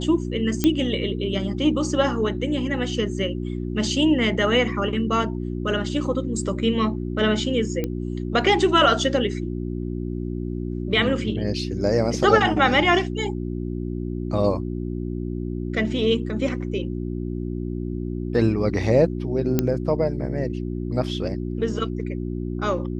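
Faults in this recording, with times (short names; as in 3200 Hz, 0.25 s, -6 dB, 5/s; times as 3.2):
hum 60 Hz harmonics 6 -28 dBFS
0.64 pop -6 dBFS
7.84 pop -13 dBFS
19.59 pop -6 dBFS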